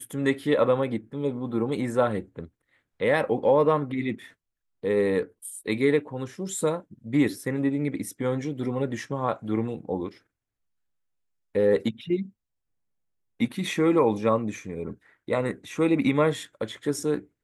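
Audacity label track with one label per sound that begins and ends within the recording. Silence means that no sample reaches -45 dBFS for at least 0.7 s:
11.550000	12.300000	sound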